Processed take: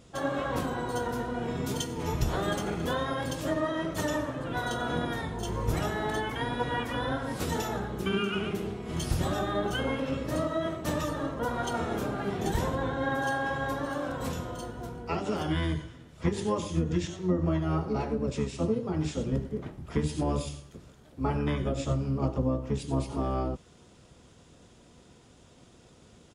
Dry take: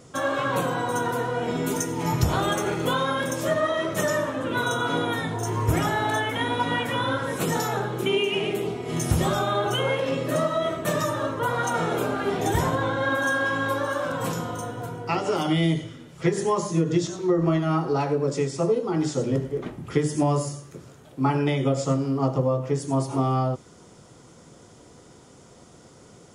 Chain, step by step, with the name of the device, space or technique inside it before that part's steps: octave pedal (harmoniser -12 st 0 dB); gain -8.5 dB

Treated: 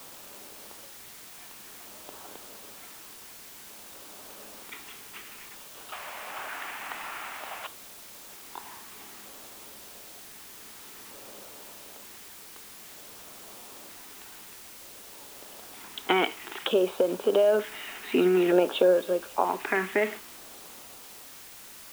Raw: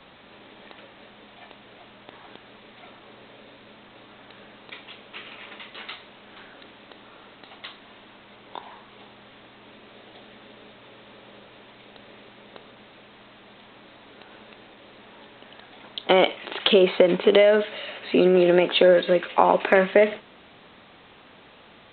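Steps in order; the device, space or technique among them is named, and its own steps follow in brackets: shortwave radio (BPF 270–2600 Hz; tremolo 0.44 Hz, depth 54%; LFO notch square 0.54 Hz 560–2000 Hz; white noise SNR 15 dB); 5.92–7.67 band shelf 1300 Hz +13.5 dB 2.6 oct

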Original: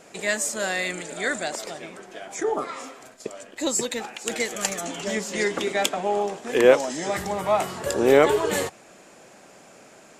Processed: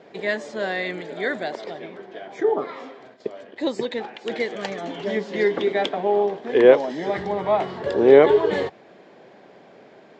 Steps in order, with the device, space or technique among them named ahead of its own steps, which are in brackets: guitar cabinet (speaker cabinet 95–3700 Hz, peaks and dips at 410 Hz +5 dB, 1300 Hz -7 dB, 2600 Hz -8 dB); gain +1.5 dB

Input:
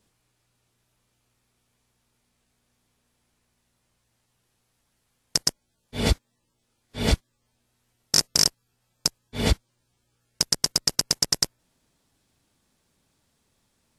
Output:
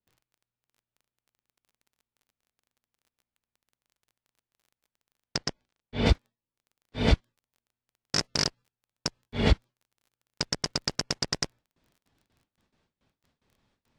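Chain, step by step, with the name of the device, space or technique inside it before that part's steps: gate with hold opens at -59 dBFS; lo-fi chain (LPF 3600 Hz 12 dB/oct; wow and flutter; crackle 22/s -51 dBFS); 5.36–6.06 LPF 6000 Hz 12 dB/oct

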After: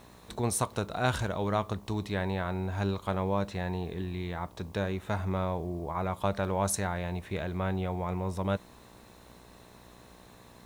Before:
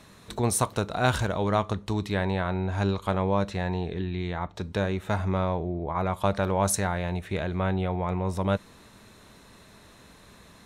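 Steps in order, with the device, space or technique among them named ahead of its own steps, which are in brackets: video cassette with head-switching buzz (buzz 60 Hz, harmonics 19, -52 dBFS -2 dB/oct; white noise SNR 35 dB); gain -4.5 dB

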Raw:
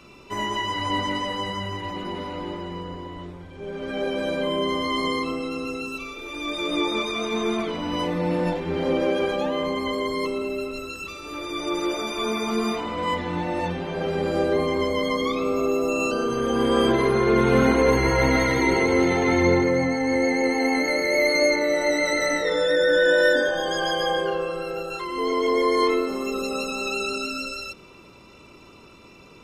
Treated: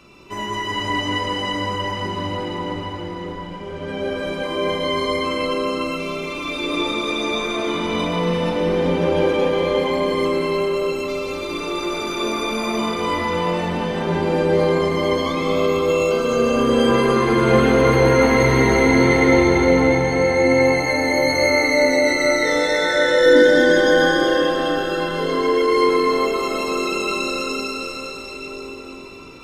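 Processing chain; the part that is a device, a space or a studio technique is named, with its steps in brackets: 23.26–23.88 resonant low shelf 410 Hz +7.5 dB, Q 3; cathedral (reverb RT60 5.8 s, pre-delay 0.11 s, DRR -2.5 dB)

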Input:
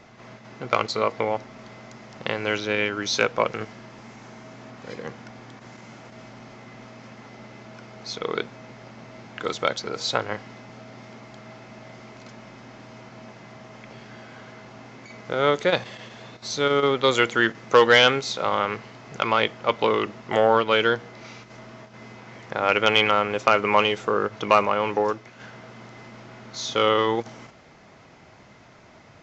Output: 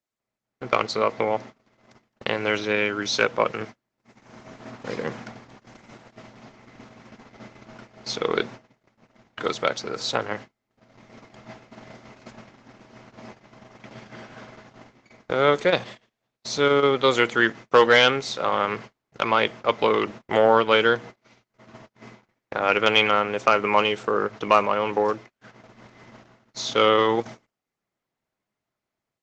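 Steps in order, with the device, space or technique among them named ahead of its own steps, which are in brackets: video call (HPF 110 Hz 12 dB/oct; AGC gain up to 9 dB; gate -33 dBFS, range -40 dB; gain -2.5 dB; Opus 16 kbps 48000 Hz)

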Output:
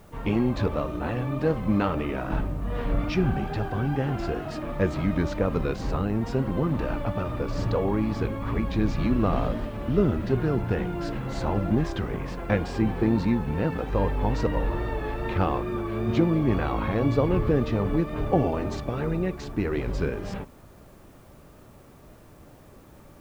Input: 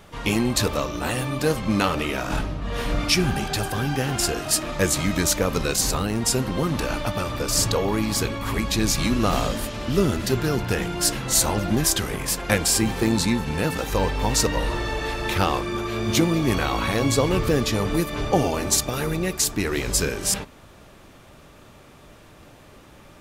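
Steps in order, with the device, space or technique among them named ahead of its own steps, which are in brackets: cassette deck with a dirty head (tape spacing loss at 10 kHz 44 dB; wow and flutter; white noise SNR 38 dB)

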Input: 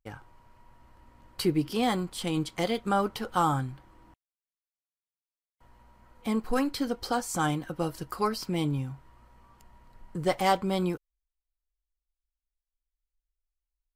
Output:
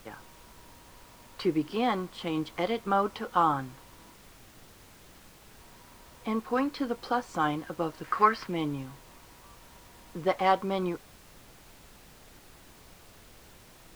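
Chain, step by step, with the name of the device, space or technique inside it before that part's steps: horn gramophone (BPF 220–3100 Hz; bell 1100 Hz +5 dB 0.25 oct; wow and flutter 21 cents; pink noise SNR 20 dB); 8.04–8.47 bell 1800 Hz +13.5 dB 1.1 oct

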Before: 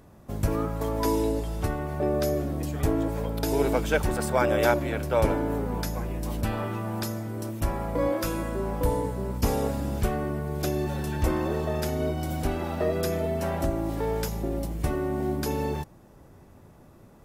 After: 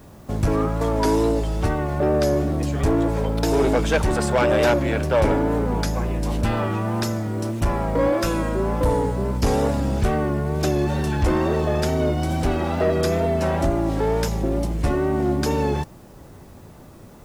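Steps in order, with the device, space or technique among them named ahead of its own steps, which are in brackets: compact cassette (soft clip -20 dBFS, distortion -14 dB; LPF 8400 Hz 12 dB/oct; wow and flutter; white noise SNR 38 dB); gain +8 dB

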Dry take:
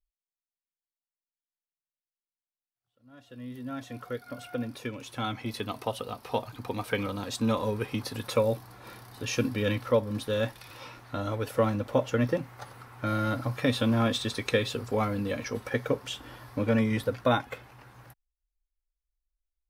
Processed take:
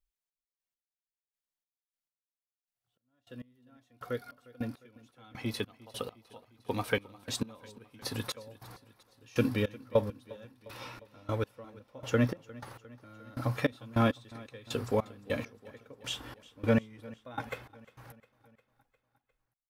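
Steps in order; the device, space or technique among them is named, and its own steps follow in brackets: trance gate with a delay (step gate "xx..x...." 101 bpm -24 dB; feedback echo 0.354 s, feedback 60%, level -21 dB)

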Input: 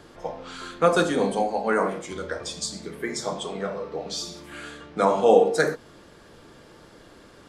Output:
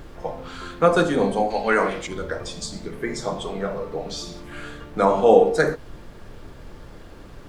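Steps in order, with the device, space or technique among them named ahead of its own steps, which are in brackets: 1.5–2.07 weighting filter D; car interior (bell 110 Hz +6.5 dB 0.72 oct; high shelf 3800 Hz -7 dB; brown noise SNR 17 dB); gain +2.5 dB

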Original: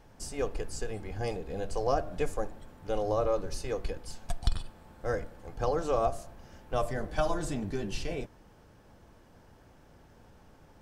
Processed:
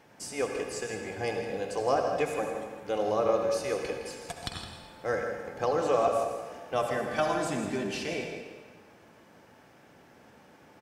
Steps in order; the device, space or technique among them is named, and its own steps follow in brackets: PA in a hall (HPF 170 Hz 12 dB/oct; bell 2200 Hz +6 dB 0.72 oct; echo 0.163 s -11 dB; reverb RT60 1.6 s, pre-delay 60 ms, DRR 4 dB); gain +1.5 dB

